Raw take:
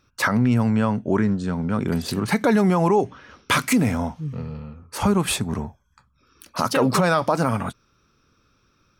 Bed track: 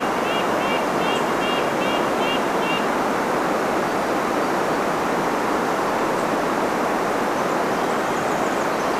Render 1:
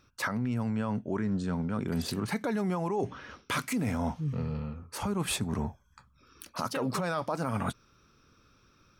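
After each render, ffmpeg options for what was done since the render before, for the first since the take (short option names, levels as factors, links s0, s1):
-af "alimiter=limit=0.282:level=0:latency=1:release=214,areverse,acompressor=threshold=0.0398:ratio=6,areverse"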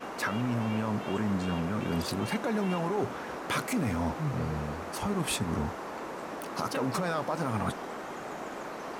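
-filter_complex "[1:a]volume=0.133[s0];[0:a][s0]amix=inputs=2:normalize=0"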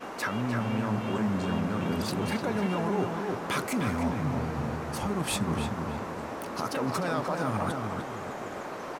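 -filter_complex "[0:a]asplit=2[s0][s1];[s1]adelay=302,lowpass=f=2400:p=1,volume=0.631,asplit=2[s2][s3];[s3]adelay=302,lowpass=f=2400:p=1,volume=0.41,asplit=2[s4][s5];[s5]adelay=302,lowpass=f=2400:p=1,volume=0.41,asplit=2[s6][s7];[s7]adelay=302,lowpass=f=2400:p=1,volume=0.41,asplit=2[s8][s9];[s9]adelay=302,lowpass=f=2400:p=1,volume=0.41[s10];[s0][s2][s4][s6][s8][s10]amix=inputs=6:normalize=0"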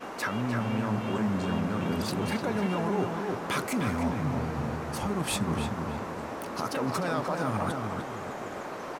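-af anull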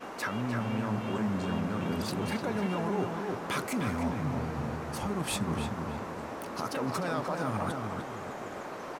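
-af "volume=0.75"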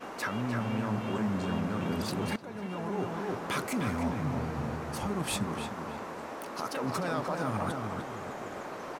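-filter_complex "[0:a]asettb=1/sr,asplit=3[s0][s1][s2];[s0]atrim=end=5.474[s3];[s1]atrim=start=5.47:end=6.84,asetpts=PTS-STARTPTS,afade=t=in:d=0.004:c=qsin,afade=t=out:st=1.366:d=0.004:c=qsin,equalizer=f=82:w=0.51:g=-10[s4];[s2]atrim=start=6.836[s5];[s3][s4]acrossfade=d=0.004:c1=hsin:c2=qsin[s6];[s6][s5]acrossfade=d=0.004:c1=qsin:c2=hsin,asplit=2[s7][s8];[s7]atrim=end=2.36,asetpts=PTS-STARTPTS,afade=t=out:st=2.356:d=0.004:c=hsin:silence=0.188365[s9];[s8]atrim=start=2.36,asetpts=PTS-STARTPTS,afade=t=in:d=0.88:silence=0.188365[s10];[s9][s10]concat=n=2:v=0:a=1"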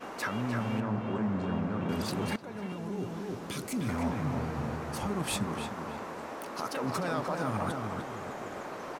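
-filter_complex "[0:a]asettb=1/sr,asplit=3[s0][s1][s2];[s0]atrim=end=0.804[s3];[s1]atrim=start=0.8:end=1.89,asetpts=PTS-STARTPTS,afade=t=in:d=0.004:c=qsin,afade=t=out:st=1.086:d=0.004:c=qsin,lowpass=f=1700:p=1[s4];[s2]atrim=start=1.886[s5];[s3][s4]acrossfade=d=0.004:c1=hsin:c2=qsin[s6];[s6][s5]acrossfade=d=0.004:c1=qsin:c2=hsin,asettb=1/sr,asplit=3[s7][s8][s9];[s7]atrim=end=2.724[s10];[s8]atrim=start=2.72:end=3.89,asetpts=PTS-STARTPTS,afade=t=in:d=0.004:c=qsin,afade=t=out:st=1.166:d=0.004:c=qsin,acrossover=split=410|3000[s11][s12][s13];[s12]acompressor=threshold=0.00562:ratio=6:attack=3.2:release=140:knee=2.83:detection=peak[s14];[s11][s14][s13]amix=inputs=3:normalize=0[s15];[s9]atrim=start=3.886[s16];[s10][s15]acrossfade=d=0.004:c1=hsin:c2=qsin[s17];[s17][s16]acrossfade=d=0.004:c1=qsin:c2=hsin"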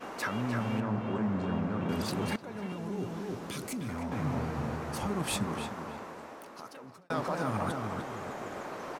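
-filter_complex "[0:a]asettb=1/sr,asplit=3[s0][s1][s2];[s0]atrim=end=3.494[s3];[s1]atrim=start=3.49:end=4.12,asetpts=PTS-STARTPTS,afade=t=in:d=0.004:c=qsin,afade=t=out:st=0.626:d=0.004:c=qsin,acompressor=threshold=0.0224:ratio=4:attack=3.2:release=140:knee=1:detection=peak[s4];[s2]atrim=start=4.116[s5];[s3][s4]acrossfade=d=0.004:c1=hsin:c2=qsin[s6];[s6][s5]acrossfade=d=0.004:c1=qsin:c2=hsin,asplit=2[s7][s8];[s7]atrim=end=7.1,asetpts=PTS-STARTPTS,afade=t=out:st=5.55:d=1.55[s9];[s8]atrim=start=7.1,asetpts=PTS-STARTPTS,afade=t=in:d=0.004:c=hsin[s10];[s9][s10]concat=n=2:v=0:a=1"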